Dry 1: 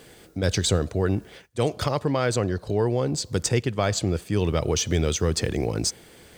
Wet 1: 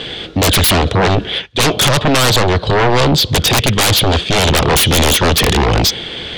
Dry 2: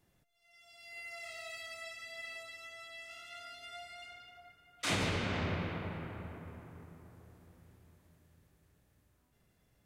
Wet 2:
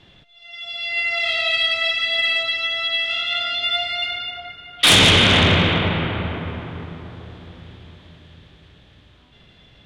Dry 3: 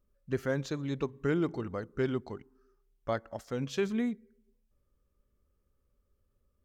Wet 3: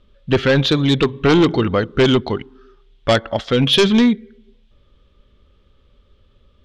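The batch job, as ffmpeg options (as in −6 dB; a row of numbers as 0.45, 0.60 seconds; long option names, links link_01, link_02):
-af "lowpass=frequency=3400:width_type=q:width=5.2,aeval=exprs='0.562*sin(PI/2*8.91*val(0)/0.562)':channel_layout=same,volume=-3dB"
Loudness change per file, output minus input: +13.0, +23.5, +17.5 LU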